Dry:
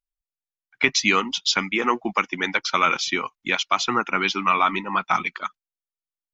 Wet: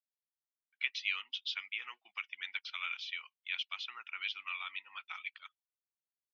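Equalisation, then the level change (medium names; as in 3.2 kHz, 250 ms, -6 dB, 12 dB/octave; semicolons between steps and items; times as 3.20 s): ladder band-pass 3.5 kHz, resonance 45%; distance through air 250 m; 0.0 dB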